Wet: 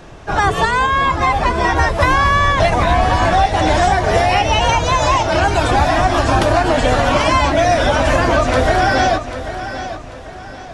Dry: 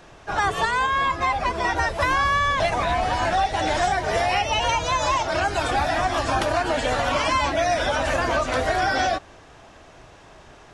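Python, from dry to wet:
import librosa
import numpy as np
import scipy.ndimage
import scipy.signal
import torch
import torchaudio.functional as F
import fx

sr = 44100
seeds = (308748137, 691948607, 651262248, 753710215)

p1 = fx.low_shelf(x, sr, hz=440.0, db=7.5)
p2 = p1 + fx.echo_feedback(p1, sr, ms=791, feedback_pct=36, wet_db=-11.5, dry=0)
y = p2 * librosa.db_to_amplitude(5.5)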